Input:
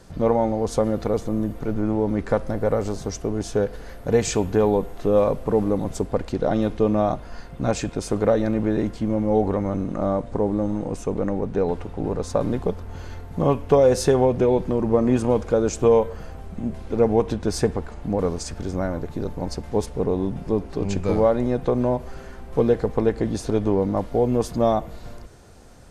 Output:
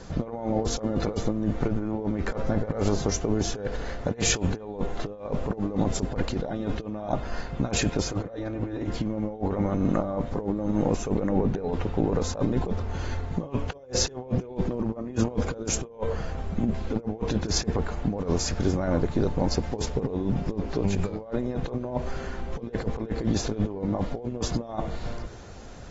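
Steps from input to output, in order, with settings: compressor with a negative ratio -26 dBFS, ratio -0.5; 8.02–8.89 s: comb of notches 210 Hz; AAC 24 kbps 44.1 kHz

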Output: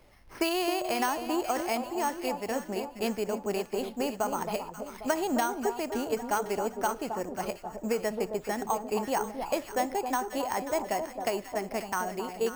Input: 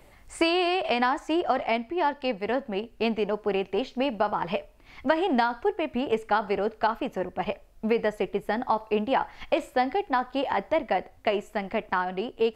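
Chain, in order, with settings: careless resampling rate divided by 6×, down none, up hold; on a send: echo whose repeats swap between lows and highs 268 ms, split 1.1 kHz, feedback 66%, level -6.5 dB; on the sum: trim -5 dB

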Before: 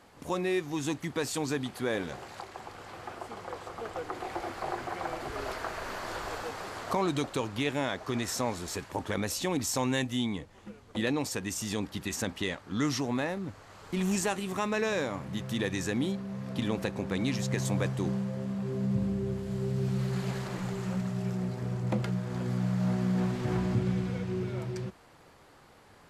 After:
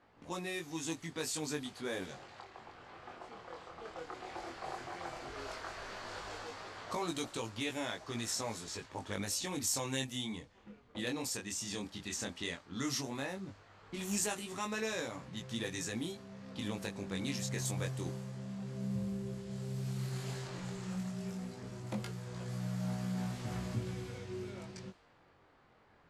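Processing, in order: level-controlled noise filter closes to 2.1 kHz, open at -26.5 dBFS; chorus 0.13 Hz, delay 17.5 ms, depth 7.2 ms; treble shelf 3.9 kHz +12 dB; trim -6 dB

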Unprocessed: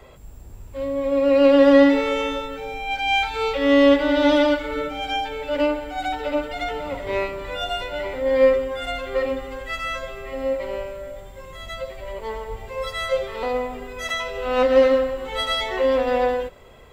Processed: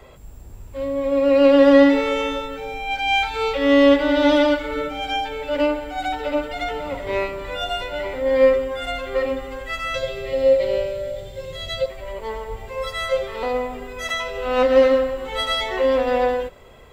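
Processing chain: 9.94–11.86 s: graphic EQ 125/250/500/1000/4000 Hz +10/-5/+11/-9/+11 dB; trim +1 dB

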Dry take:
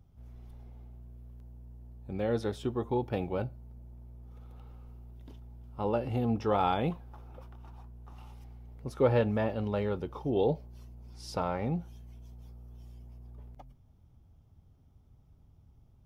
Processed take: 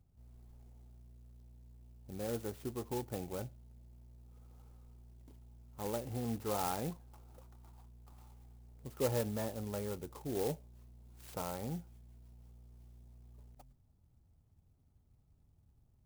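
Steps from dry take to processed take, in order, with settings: sampling jitter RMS 0.086 ms; trim -8.5 dB

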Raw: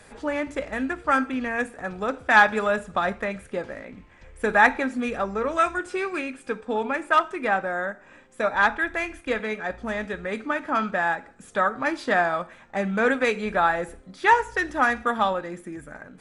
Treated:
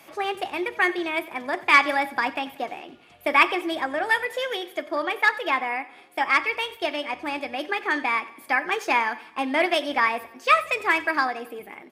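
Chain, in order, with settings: high-pass 150 Hz 12 dB/octave; wide varispeed 1.36×; feedback delay 92 ms, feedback 47%, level -18.5 dB

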